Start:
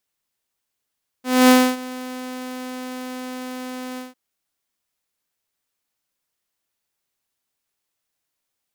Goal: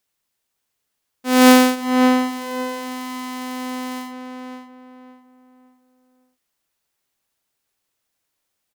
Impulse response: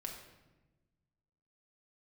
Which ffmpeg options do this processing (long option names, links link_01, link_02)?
-filter_complex "[0:a]asplit=2[link_01][link_02];[link_02]adelay=560,lowpass=frequency=2000:poles=1,volume=-4dB,asplit=2[link_03][link_04];[link_04]adelay=560,lowpass=frequency=2000:poles=1,volume=0.35,asplit=2[link_05][link_06];[link_06]adelay=560,lowpass=frequency=2000:poles=1,volume=0.35,asplit=2[link_07][link_08];[link_08]adelay=560,lowpass=frequency=2000:poles=1,volume=0.35[link_09];[link_01][link_03][link_05][link_07][link_09]amix=inputs=5:normalize=0,volume=3dB"